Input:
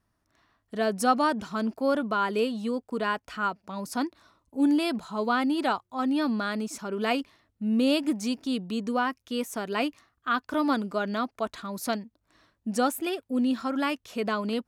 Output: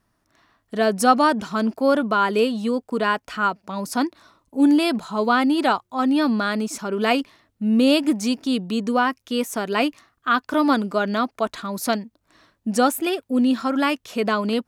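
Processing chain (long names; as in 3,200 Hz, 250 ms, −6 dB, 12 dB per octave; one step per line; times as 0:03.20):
parametric band 68 Hz −8 dB 0.93 octaves
level +7 dB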